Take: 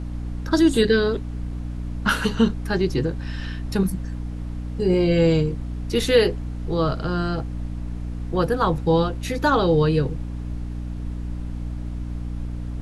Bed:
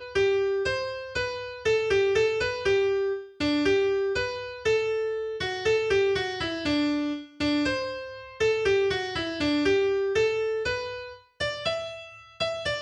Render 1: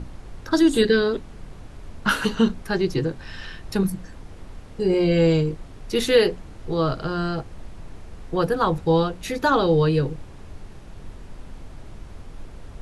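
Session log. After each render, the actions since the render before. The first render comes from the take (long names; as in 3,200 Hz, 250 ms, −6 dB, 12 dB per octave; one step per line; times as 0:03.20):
mains-hum notches 60/120/180/240/300 Hz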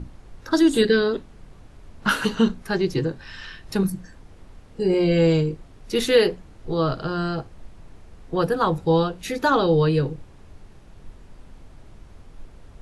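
noise reduction from a noise print 6 dB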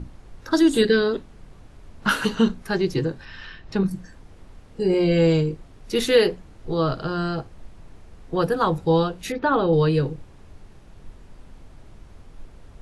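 0:03.25–0:03.91: high-frequency loss of the air 120 metres
0:09.32–0:09.73: high-frequency loss of the air 320 metres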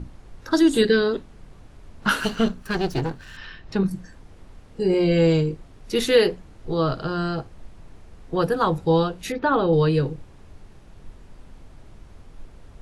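0:02.20–0:03.37: lower of the sound and its delayed copy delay 0.69 ms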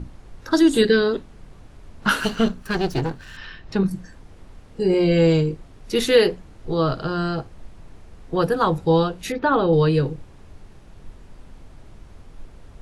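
level +1.5 dB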